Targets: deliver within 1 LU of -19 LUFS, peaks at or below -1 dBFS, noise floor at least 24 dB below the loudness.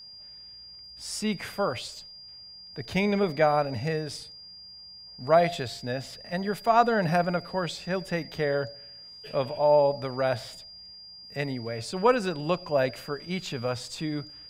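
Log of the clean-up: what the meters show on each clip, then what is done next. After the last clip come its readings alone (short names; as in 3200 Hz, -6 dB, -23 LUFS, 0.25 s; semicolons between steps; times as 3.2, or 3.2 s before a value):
steady tone 4800 Hz; tone level -44 dBFS; loudness -27.5 LUFS; peak -8.0 dBFS; loudness target -19.0 LUFS
-> notch 4800 Hz, Q 30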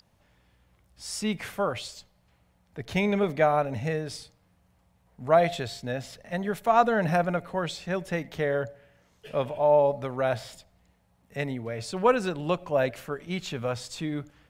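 steady tone none; loudness -27.5 LUFS; peak -8.0 dBFS; loudness target -19.0 LUFS
-> gain +8.5 dB; limiter -1 dBFS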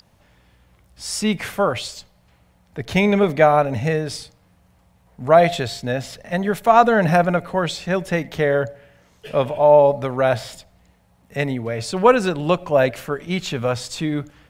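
loudness -19.5 LUFS; peak -1.0 dBFS; noise floor -58 dBFS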